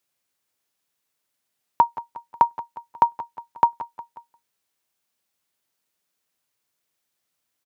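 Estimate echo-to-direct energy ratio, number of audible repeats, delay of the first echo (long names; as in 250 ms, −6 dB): −13.5 dB, 3, 180 ms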